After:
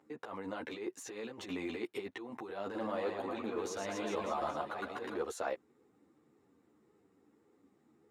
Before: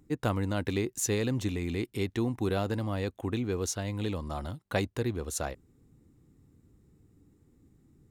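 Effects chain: negative-ratio compressor -33 dBFS, ratio -0.5; HPF 540 Hz 12 dB/oct; 2.64–5.16 reverse bouncing-ball echo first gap 0.11 s, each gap 1.2×, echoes 5; limiter -27.5 dBFS, peak gain reduction 8 dB; LPF 1200 Hz 6 dB/oct; ensemble effect; gain +8 dB

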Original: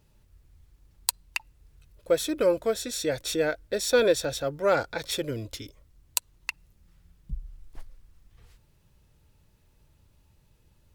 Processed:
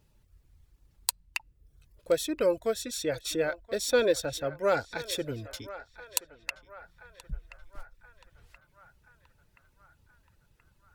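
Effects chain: reverb removal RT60 0.51 s; narrowing echo 1.027 s, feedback 63%, band-pass 1300 Hz, level -13.5 dB; gain -2.5 dB

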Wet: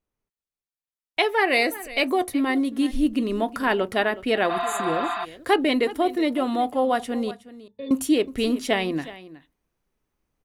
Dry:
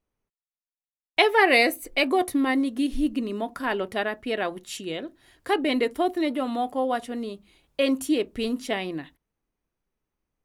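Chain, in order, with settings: 7.31–7.91 octave resonator A, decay 0.14 s; vocal rider within 4 dB 0.5 s; echo 0.368 s -17 dB; 4.52–5.22 spectral repair 670–6300 Hz before; gain +1.5 dB

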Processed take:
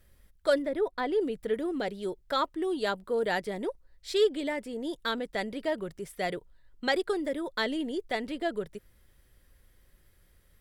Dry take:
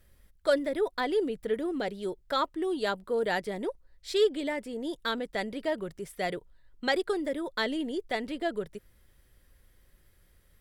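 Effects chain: 0.62–1.21 high shelf 2800 Hz -9 dB

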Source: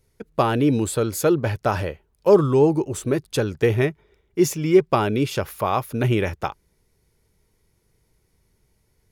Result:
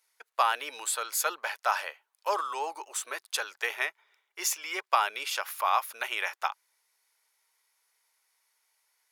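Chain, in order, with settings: HPF 860 Hz 24 dB/oct

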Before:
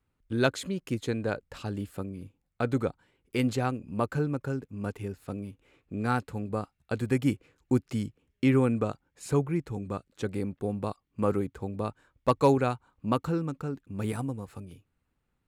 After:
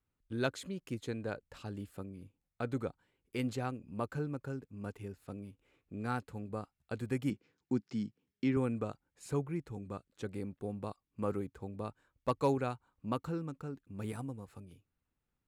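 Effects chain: 7.3–8.57 speaker cabinet 130–6500 Hz, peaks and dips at 210 Hz +6 dB, 580 Hz -7 dB, 1200 Hz -4 dB, 2600 Hz -3 dB, 5300 Hz +5 dB; gain -8.5 dB

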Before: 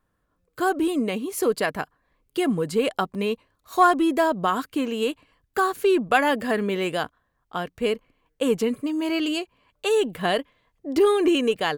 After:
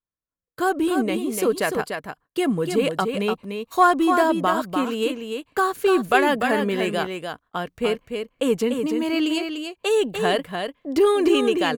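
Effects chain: gate -45 dBFS, range -26 dB; on a send: echo 0.295 s -6 dB; on the sum: gain +1 dB

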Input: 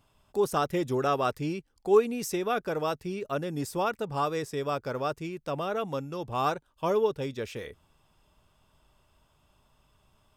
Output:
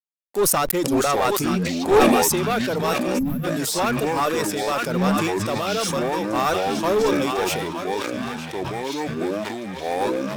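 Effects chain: reverb removal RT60 0.73 s; echoes that change speed 0.328 s, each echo -7 st, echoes 2; narrowing echo 0.917 s, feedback 52%, band-pass 2300 Hz, level -5.5 dB; crossover distortion -49 dBFS; HPF 190 Hz 12 dB/oct; high shelf 6200 Hz +10.5 dB; one-sided clip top -26 dBFS; spectral gain 3.19–3.44, 260–11000 Hz -24 dB; sustainer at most 24 dB/s; gain +7.5 dB

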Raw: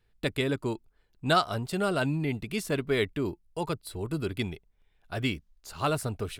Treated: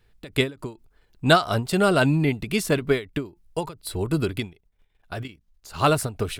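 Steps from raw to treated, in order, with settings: 4.53–5.74 level quantiser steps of 13 dB; ending taper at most 200 dB/s; gain +8.5 dB

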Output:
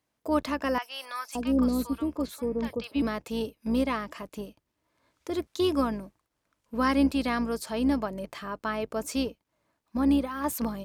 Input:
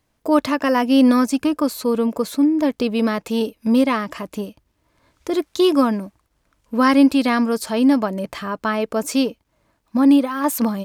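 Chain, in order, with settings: octaver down 2 oct, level -5 dB; HPF 180 Hz 6 dB/oct; 0.78–3.02 three bands offset in time mids, highs, lows 40/570 ms, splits 830/5800 Hz; gain -9 dB

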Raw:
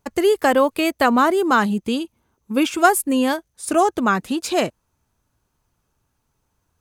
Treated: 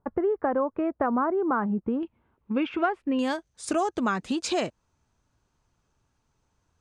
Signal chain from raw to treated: LPF 1400 Hz 24 dB/oct, from 2.03 s 2800 Hz, from 3.19 s 7800 Hz; compressor 3:1, threshold -23 dBFS, peak gain reduction 11 dB; gain -1.5 dB

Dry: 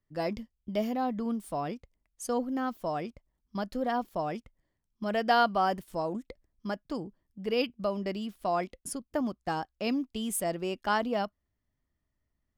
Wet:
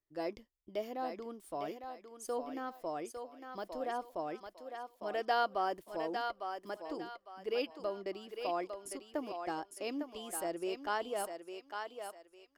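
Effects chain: resonant low shelf 270 Hz -6 dB, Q 3; thinning echo 0.854 s, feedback 34%, high-pass 490 Hz, level -5 dB; gain -8 dB

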